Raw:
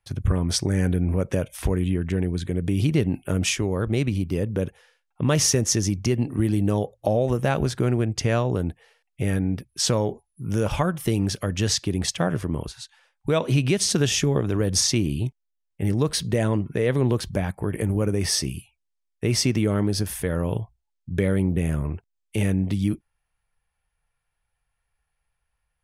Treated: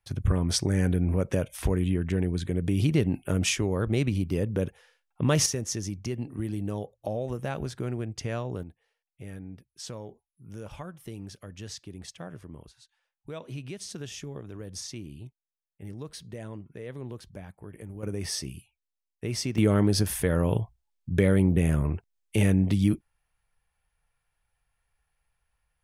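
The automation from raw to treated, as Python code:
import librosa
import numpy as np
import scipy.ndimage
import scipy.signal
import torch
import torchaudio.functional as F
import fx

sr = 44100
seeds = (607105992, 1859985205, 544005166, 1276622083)

y = fx.gain(x, sr, db=fx.steps((0.0, -2.5), (5.46, -10.0), (8.63, -17.5), (18.03, -9.0), (19.58, 0.5)))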